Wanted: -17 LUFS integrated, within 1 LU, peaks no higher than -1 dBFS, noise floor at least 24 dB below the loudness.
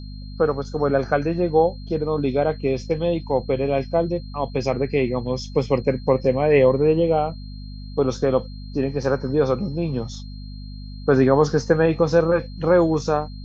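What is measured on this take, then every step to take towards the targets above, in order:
hum 50 Hz; harmonics up to 250 Hz; hum level -32 dBFS; steady tone 4200 Hz; tone level -47 dBFS; loudness -21.5 LUFS; peak -4.0 dBFS; loudness target -17.0 LUFS
-> de-hum 50 Hz, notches 5; notch 4200 Hz, Q 30; gain +4.5 dB; limiter -1 dBFS

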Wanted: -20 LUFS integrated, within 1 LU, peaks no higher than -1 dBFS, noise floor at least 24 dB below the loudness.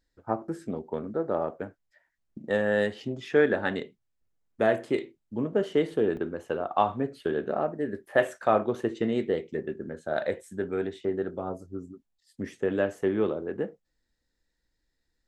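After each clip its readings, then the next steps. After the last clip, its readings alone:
dropouts 1; longest dropout 1.1 ms; loudness -29.0 LUFS; peak -8.5 dBFS; loudness target -20.0 LUFS
-> interpolate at 6.17, 1.1 ms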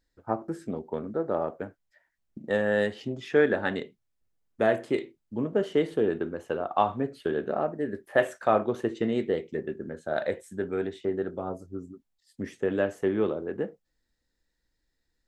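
dropouts 0; loudness -29.0 LUFS; peak -8.5 dBFS; loudness target -20.0 LUFS
-> gain +9 dB; limiter -1 dBFS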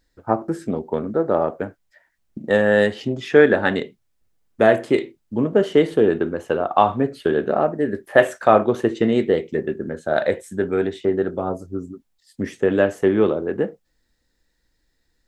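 loudness -20.0 LUFS; peak -1.0 dBFS; noise floor -69 dBFS

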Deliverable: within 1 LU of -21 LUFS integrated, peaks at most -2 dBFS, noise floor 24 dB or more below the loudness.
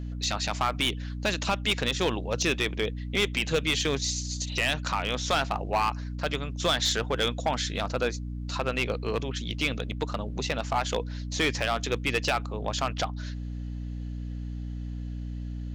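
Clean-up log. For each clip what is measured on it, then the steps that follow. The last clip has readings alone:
clipped 0.6%; flat tops at -18.5 dBFS; hum 60 Hz; harmonics up to 300 Hz; hum level -32 dBFS; loudness -29.0 LUFS; peak -18.5 dBFS; loudness target -21.0 LUFS
-> clip repair -18.5 dBFS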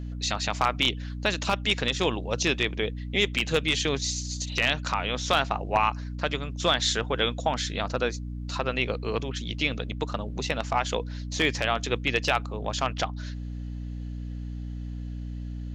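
clipped 0.0%; hum 60 Hz; harmonics up to 300 Hz; hum level -32 dBFS
-> de-hum 60 Hz, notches 5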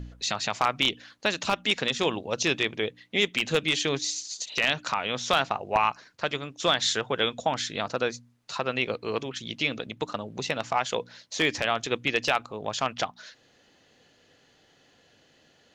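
hum none; loudness -27.5 LUFS; peak -9.0 dBFS; loudness target -21.0 LUFS
-> gain +6.5 dB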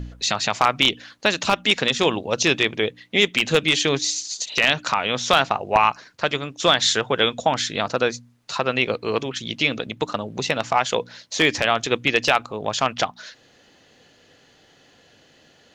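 loudness -21.0 LUFS; peak -2.5 dBFS; noise floor -56 dBFS

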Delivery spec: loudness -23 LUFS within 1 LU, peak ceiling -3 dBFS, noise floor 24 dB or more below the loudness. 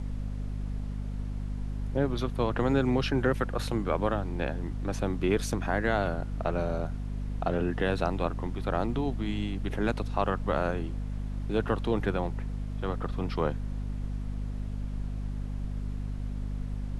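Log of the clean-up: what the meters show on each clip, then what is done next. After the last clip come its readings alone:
hum 50 Hz; harmonics up to 250 Hz; hum level -31 dBFS; noise floor -35 dBFS; noise floor target -56 dBFS; loudness -31.5 LUFS; peak -12.0 dBFS; loudness target -23.0 LUFS
-> notches 50/100/150/200/250 Hz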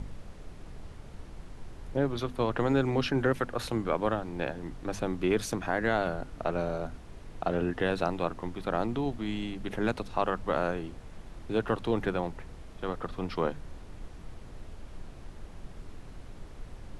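hum none; noise floor -47 dBFS; noise floor target -56 dBFS
-> noise print and reduce 9 dB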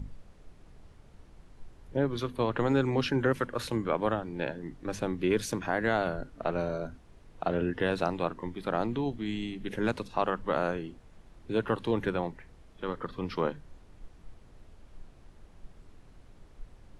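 noise floor -55 dBFS; noise floor target -56 dBFS
-> noise print and reduce 6 dB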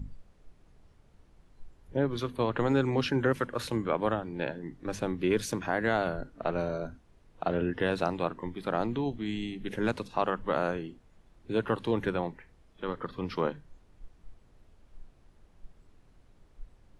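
noise floor -61 dBFS; loudness -31.5 LUFS; peak -13.0 dBFS; loudness target -23.0 LUFS
-> gain +8.5 dB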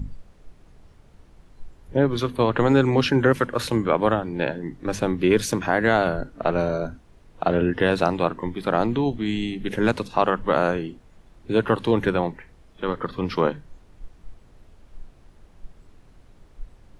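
loudness -23.0 LUFS; peak -4.5 dBFS; noise floor -53 dBFS

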